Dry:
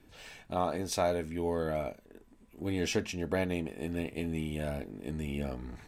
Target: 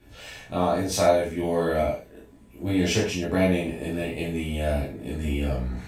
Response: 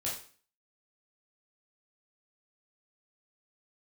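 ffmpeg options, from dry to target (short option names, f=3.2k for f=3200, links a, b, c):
-filter_complex "[0:a]asettb=1/sr,asplit=3[a][b][c];[a]atrim=end=1.384[d];[b]atrim=start=1.38:end=1.81,asetpts=PTS-STARTPTS,afade=t=in:d=0.004:c=qsin,afade=t=out:st=0.426:d=0.004:c=qsin,asplit=2[e][f];[f]adelay=43,volume=-2.5dB[g];[e][g]amix=inputs=2:normalize=0,atrim=end_sample=18963[h];[c]atrim=start=1.806[i];[d][h]acrossfade=d=0.004:c1=hsin:c2=qsin[j];[j][i]acrossfade=d=0.004:c1=qsin:c2=hsin[k];[1:a]atrim=start_sample=2205,atrim=end_sample=6174[l];[k][l]afir=irnorm=-1:irlink=0,volume=5dB"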